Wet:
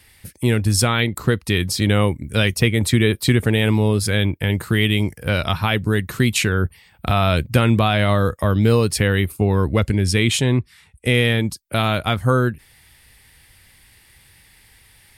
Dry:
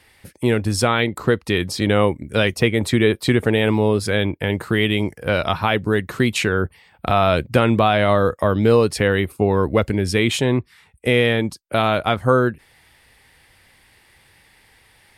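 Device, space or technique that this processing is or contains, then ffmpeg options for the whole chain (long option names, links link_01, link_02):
smiley-face EQ: -filter_complex "[0:a]asettb=1/sr,asplit=3[link_01][link_02][link_03];[link_01]atrim=end=9.634[link_04];[link_02]atrim=start=9.63:end=11.15,asetpts=PTS-STARTPTS,afade=type=in:duration=0.004:curve=qsin,afade=type=out:start_time=1.516:duration=0.004:curve=qsin,lowpass=11000[link_05];[link_03]atrim=start=11.146[link_06];[link_04][link_05]acrossfade=duration=0.004:curve1=hsin:curve2=qsin[link_07];[link_07][link_06]acrossfade=duration=0.004:curve1=qsin:curve2=hsin,lowshelf=frequency=180:gain=5,equalizer=frequency=590:width_type=o:width=2.7:gain=-7,highshelf=frequency=8800:gain=9,volume=2dB"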